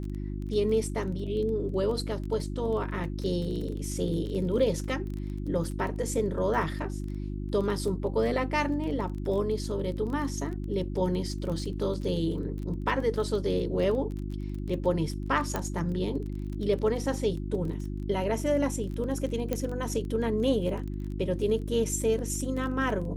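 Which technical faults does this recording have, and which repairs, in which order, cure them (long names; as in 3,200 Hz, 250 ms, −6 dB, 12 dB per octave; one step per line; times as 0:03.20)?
surface crackle 21 per second −35 dBFS
mains hum 50 Hz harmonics 7 −34 dBFS
0:15.56: click −15 dBFS
0:19.53: click −15 dBFS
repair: click removal
hum removal 50 Hz, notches 7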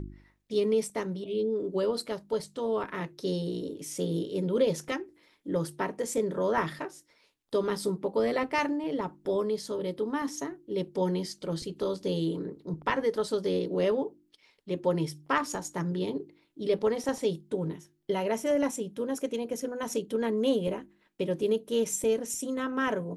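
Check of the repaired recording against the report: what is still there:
none of them is left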